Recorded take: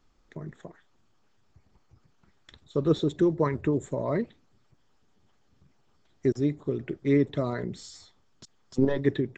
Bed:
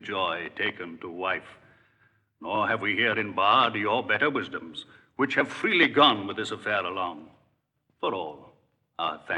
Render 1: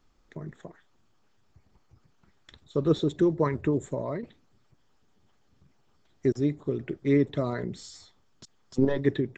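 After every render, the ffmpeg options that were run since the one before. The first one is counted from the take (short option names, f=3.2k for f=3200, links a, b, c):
-filter_complex "[0:a]asplit=2[a][b];[a]atrim=end=4.23,asetpts=PTS-STARTPTS,afade=t=out:st=3.82:d=0.41:c=qsin:silence=0.298538[c];[b]atrim=start=4.23,asetpts=PTS-STARTPTS,afade=t=in:d=0.004:c=hsin:silence=0.298538[d];[c][d]concat=n=2:v=0:a=1"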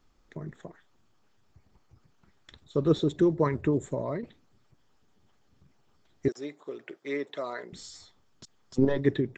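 -filter_complex "[0:a]asettb=1/sr,asplit=3[a][b][c];[a]atrim=end=6.284[d];[b]atrim=start=6.28:end=7.73,asetpts=PTS-STARTPTS,afade=t=in:d=0.004:c=qsin,afade=t=out:st=1.446:d=0.004:c=qsin,highpass=610[e];[c]atrim=start=7.726[f];[d][e]acrossfade=d=0.004:c1=hsin:c2=qsin[g];[g][f]acrossfade=d=0.004:c1=qsin:c2=hsin"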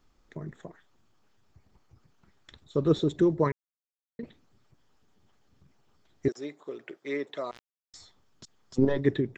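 -filter_complex "[0:a]asettb=1/sr,asplit=3[a][b][c];[a]atrim=end=7.514[d];[b]atrim=start=7.51:end=7.94,asetpts=PTS-STARTPTS,afade=t=in:d=0.004:c=qsin,afade=t=out:st=0.426:d=0.004:c=qsin,acrusher=bits=3:mix=0:aa=0.5[e];[c]atrim=start=7.936[f];[d][e]acrossfade=d=0.004:c1=hsin:c2=qsin[g];[g][f]acrossfade=d=0.004:c1=qsin:c2=hsin,asplit=3[h][i][j];[h]atrim=end=3.52,asetpts=PTS-STARTPTS,afade=t=out:st=3.516:d=0.004:c=hsin[k];[i]atrim=start=3.52:end=4.19,asetpts=PTS-STARTPTS,volume=0[l];[j]atrim=start=4.19,asetpts=PTS-STARTPTS,afade=t=in:d=0.004:c=hsin[m];[k][l][m]concat=n=3:v=0:a=1"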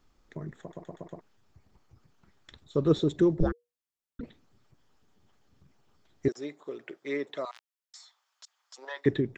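-filter_complex "[0:a]asettb=1/sr,asplit=3[a][b][c];[a]atrim=end=3.404[d];[b]atrim=start=3.4:end=4.21,asetpts=PTS-STARTPTS,afade=t=in:d=0.004:c=qsin,afade=t=out:st=0.806:d=0.004:c=qsin,afreqshift=-480[e];[c]atrim=start=4.206[f];[d][e]acrossfade=d=0.004:c1=hsin:c2=qsin[g];[g][f]acrossfade=d=0.004:c1=qsin:c2=hsin,asettb=1/sr,asplit=3[h][i][j];[h]atrim=end=7.454[k];[i]atrim=start=7.45:end=9.06,asetpts=PTS-STARTPTS,afade=t=in:d=0.004:c=qsin,afade=t=out:st=1.606:d=0.004:c=qsin,highpass=f=820:w=0.5412,highpass=f=820:w=1.3066[l];[j]atrim=start=9.056[m];[k][l]acrossfade=d=0.004:c1=hsin:c2=qsin[n];[n][m]acrossfade=d=0.004:c1=qsin:c2=hsin,asplit=6[o][p][q][r][s][t];[o]atrim=end=0.732[u];[p]atrim=start=0.608:end=0.732[v];[q]atrim=start=0.608:end=0.732[w];[r]atrim=start=0.608:end=0.732[x];[s]atrim=start=0.608:end=0.732[y];[t]atrim=start=1.208[z];[u][v]acrossfade=d=0.004:c1=hsin:c2=hsin[aa];[aa][w]acrossfade=d=0.004:c1=hsin:c2=hsin[ab];[ab][x]acrossfade=d=0.004:c1=hsin:c2=hsin[ac];[ac][y]acrossfade=d=0.004:c1=hsin:c2=hsin[ad];[ad][z]acrossfade=d=0.004:c1=hsin:c2=hsin"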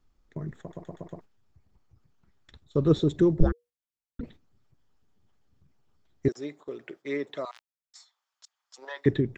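-af "agate=range=-8dB:threshold=-51dB:ratio=16:detection=peak,lowshelf=f=150:g=8.5"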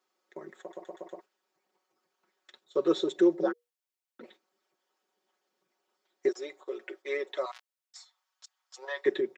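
-af "highpass=f=370:w=0.5412,highpass=f=370:w=1.3066,aecho=1:1:5.4:0.71"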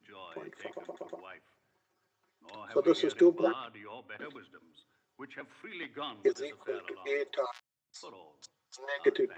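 -filter_complex "[1:a]volume=-21.5dB[a];[0:a][a]amix=inputs=2:normalize=0"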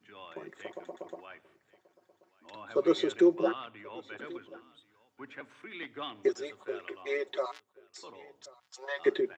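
-af "aecho=1:1:1083:0.0841"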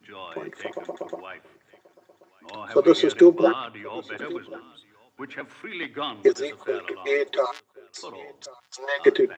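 -af "volume=9.5dB"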